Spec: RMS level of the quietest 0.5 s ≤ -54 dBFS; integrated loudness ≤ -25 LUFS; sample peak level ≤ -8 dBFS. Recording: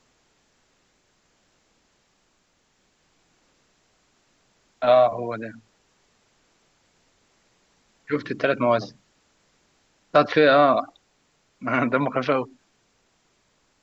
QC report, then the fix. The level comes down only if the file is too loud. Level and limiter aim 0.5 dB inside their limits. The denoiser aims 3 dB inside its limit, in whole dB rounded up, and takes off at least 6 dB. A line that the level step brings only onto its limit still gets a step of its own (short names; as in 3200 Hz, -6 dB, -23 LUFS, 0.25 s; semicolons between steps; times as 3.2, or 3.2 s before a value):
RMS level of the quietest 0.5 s -67 dBFS: OK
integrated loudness -21.5 LUFS: fail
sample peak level -5.0 dBFS: fail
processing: gain -4 dB